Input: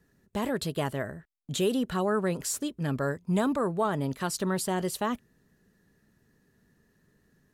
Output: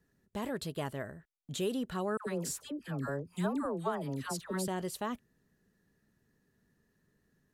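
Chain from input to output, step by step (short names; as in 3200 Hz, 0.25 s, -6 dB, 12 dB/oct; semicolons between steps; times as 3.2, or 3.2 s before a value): 2.17–4.68 dispersion lows, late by 98 ms, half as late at 950 Hz; gain -7 dB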